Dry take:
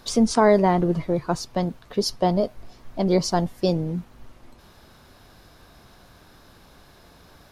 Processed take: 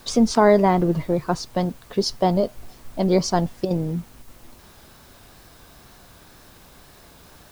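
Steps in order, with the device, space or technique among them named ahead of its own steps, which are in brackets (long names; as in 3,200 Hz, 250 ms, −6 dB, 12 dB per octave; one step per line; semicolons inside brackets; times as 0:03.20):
worn cassette (low-pass filter 7,900 Hz; tape wow and flutter; tape dropouts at 0:03.65/0:04.22, 54 ms −8 dB; white noise bed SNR 31 dB)
level +1.5 dB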